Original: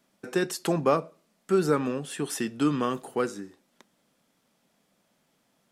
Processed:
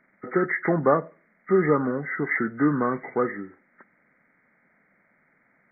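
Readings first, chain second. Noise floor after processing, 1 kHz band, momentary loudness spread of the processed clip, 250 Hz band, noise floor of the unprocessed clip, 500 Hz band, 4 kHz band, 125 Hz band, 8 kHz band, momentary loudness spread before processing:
-66 dBFS, +3.5 dB, 7 LU, +3.0 dB, -71 dBFS, +3.0 dB, under -40 dB, +3.0 dB, under -40 dB, 8 LU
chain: knee-point frequency compression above 1.2 kHz 4:1; trim +3 dB

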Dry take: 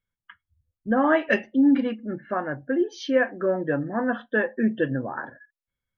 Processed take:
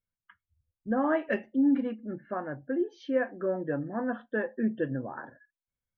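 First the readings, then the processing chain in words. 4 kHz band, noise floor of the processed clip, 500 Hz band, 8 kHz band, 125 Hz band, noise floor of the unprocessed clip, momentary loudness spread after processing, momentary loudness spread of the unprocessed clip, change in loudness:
under -10 dB, under -85 dBFS, -6.0 dB, no reading, -5.5 dB, under -85 dBFS, 11 LU, 11 LU, -6.5 dB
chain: low-pass 1.3 kHz 6 dB/octave; trim -5.5 dB

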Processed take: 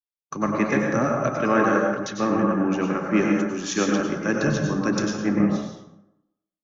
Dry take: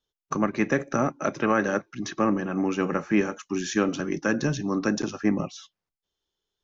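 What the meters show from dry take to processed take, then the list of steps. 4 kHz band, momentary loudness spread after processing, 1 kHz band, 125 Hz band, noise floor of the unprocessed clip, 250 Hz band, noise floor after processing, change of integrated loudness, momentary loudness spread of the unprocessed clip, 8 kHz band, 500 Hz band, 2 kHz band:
+3.0 dB, 5 LU, +4.0 dB, +4.5 dB, under -85 dBFS, +3.5 dB, under -85 dBFS, +3.5 dB, 6 LU, no reading, +3.5 dB, +3.0 dB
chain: plate-style reverb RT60 1.4 s, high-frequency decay 0.45×, pre-delay 85 ms, DRR -1 dB; three bands expanded up and down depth 70%

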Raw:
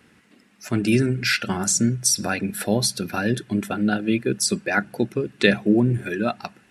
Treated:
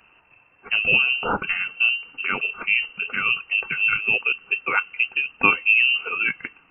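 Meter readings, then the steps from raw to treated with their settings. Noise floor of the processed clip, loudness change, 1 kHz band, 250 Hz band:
-58 dBFS, +2.0 dB, +1.5 dB, -17.5 dB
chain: frequency inversion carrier 2.9 kHz

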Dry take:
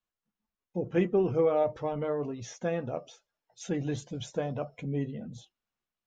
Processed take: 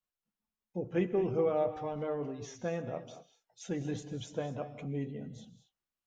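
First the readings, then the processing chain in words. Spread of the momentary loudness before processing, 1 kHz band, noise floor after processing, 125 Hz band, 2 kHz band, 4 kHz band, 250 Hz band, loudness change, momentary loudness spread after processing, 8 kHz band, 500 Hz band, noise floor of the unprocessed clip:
14 LU, -3.5 dB, under -85 dBFS, -4.0 dB, -4.0 dB, -4.0 dB, -4.0 dB, -4.0 dB, 15 LU, no reading, -4.0 dB, under -85 dBFS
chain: gated-style reverb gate 260 ms rising, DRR 10.5 dB; trim -4.5 dB

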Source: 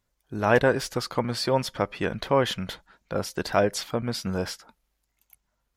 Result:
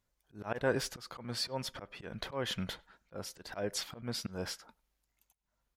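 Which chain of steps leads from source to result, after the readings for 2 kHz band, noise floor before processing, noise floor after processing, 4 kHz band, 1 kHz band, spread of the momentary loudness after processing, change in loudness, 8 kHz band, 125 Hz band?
-12.0 dB, -77 dBFS, -83 dBFS, -6.5 dB, -16.0 dB, 13 LU, -12.0 dB, -6.0 dB, -12.0 dB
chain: slow attack 245 ms; speakerphone echo 100 ms, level -25 dB; trim -5 dB

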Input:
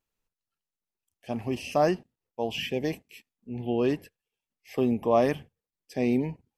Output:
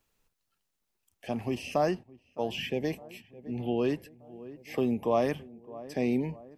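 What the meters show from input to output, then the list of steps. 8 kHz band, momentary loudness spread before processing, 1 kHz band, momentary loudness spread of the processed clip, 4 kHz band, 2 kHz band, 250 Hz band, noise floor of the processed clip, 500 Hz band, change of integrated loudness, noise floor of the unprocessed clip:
-3.0 dB, 13 LU, -3.5 dB, 18 LU, -3.0 dB, -2.5 dB, -2.5 dB, -81 dBFS, -3.0 dB, -3.0 dB, under -85 dBFS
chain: on a send: filtered feedback delay 612 ms, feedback 69%, low-pass 1.2 kHz, level -23 dB; on the sum: three bands compressed up and down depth 40%; trim -2.5 dB

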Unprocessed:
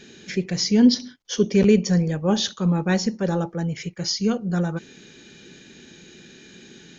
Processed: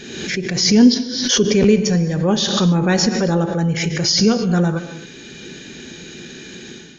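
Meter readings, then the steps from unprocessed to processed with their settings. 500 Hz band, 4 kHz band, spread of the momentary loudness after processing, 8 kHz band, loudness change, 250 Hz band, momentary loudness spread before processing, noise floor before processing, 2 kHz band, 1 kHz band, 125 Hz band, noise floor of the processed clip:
+5.0 dB, +9.0 dB, 21 LU, no reading, +5.5 dB, +5.0 dB, 11 LU, -48 dBFS, +8.0 dB, +6.5 dB, +5.5 dB, -38 dBFS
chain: level rider gain up to 12.5 dB; gated-style reverb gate 290 ms flat, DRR 10 dB; swell ahead of each attack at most 46 dB/s; trim -2 dB

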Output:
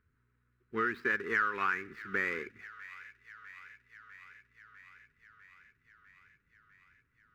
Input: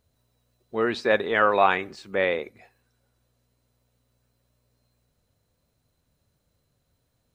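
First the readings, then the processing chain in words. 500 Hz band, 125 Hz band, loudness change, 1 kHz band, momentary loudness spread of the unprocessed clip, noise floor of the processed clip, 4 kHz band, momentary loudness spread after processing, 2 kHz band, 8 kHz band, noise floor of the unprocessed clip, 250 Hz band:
-16.5 dB, -10.0 dB, -10.0 dB, -11.0 dB, 12 LU, -76 dBFS, -16.5 dB, 22 LU, -4.0 dB, no reading, -74 dBFS, -10.0 dB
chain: median filter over 15 samples; FFT filter 420 Hz 0 dB, 640 Hz -24 dB, 1.4 kHz +14 dB, 2.4 kHz +8 dB, 4.1 kHz -7 dB; compression 4:1, threshold -25 dBFS, peak gain reduction 14.5 dB; feedback echo behind a high-pass 650 ms, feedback 73%, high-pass 1.9 kHz, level -13 dB; trim -4 dB

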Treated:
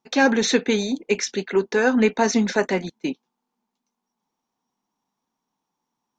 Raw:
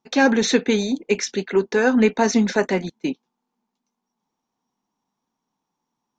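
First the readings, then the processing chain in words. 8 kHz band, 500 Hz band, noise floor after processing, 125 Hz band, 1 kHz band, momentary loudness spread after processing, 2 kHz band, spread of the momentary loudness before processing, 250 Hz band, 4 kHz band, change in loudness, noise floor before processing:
0.0 dB, -1.0 dB, -82 dBFS, -2.5 dB, -0.5 dB, 11 LU, 0.0 dB, 11 LU, -2.0 dB, 0.0 dB, -1.5 dB, -81 dBFS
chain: bass shelf 360 Hz -3 dB

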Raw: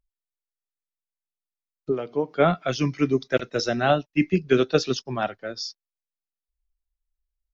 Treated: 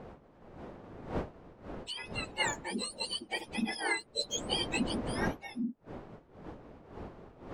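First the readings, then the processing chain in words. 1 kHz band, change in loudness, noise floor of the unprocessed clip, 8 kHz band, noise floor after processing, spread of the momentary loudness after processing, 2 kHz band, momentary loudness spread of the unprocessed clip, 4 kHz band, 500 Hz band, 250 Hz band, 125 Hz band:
-11.0 dB, -11.0 dB, under -85 dBFS, no reading, -60 dBFS, 18 LU, -5.0 dB, 11 LU, -1.5 dB, -17.0 dB, -11.5 dB, -13.5 dB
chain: spectrum inverted on a logarithmic axis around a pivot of 1.1 kHz; wind noise 530 Hz -35 dBFS; trim -8.5 dB

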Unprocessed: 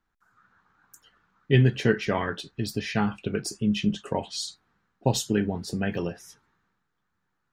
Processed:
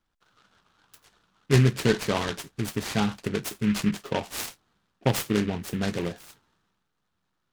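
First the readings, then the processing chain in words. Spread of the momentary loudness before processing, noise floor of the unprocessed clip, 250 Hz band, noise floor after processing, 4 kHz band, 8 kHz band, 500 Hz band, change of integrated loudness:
11 LU, -78 dBFS, 0.0 dB, -77 dBFS, 0.0 dB, +1.0 dB, 0.0 dB, 0.0 dB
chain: delay time shaken by noise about 1.9 kHz, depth 0.093 ms

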